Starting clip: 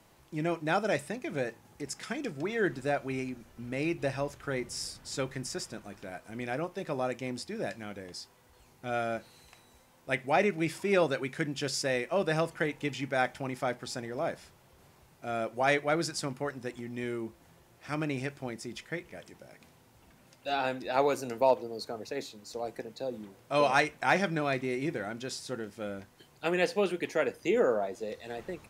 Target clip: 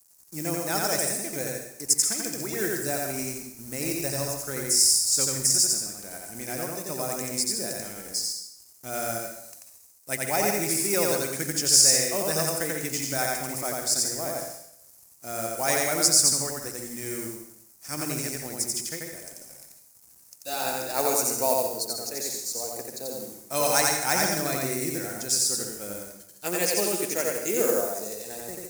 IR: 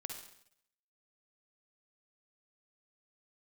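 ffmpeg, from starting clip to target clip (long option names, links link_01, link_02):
-filter_complex "[0:a]acrusher=bits=7:mode=log:mix=0:aa=0.000001,aeval=exprs='sgn(val(0))*max(abs(val(0))-0.00133,0)':channel_layout=same,aexciter=amount=13.9:drive=3.6:freq=5000,asplit=2[link_01][link_02];[1:a]atrim=start_sample=2205,adelay=88[link_03];[link_02][link_03]afir=irnorm=-1:irlink=0,volume=2.5dB[link_04];[link_01][link_04]amix=inputs=2:normalize=0,volume=-2dB"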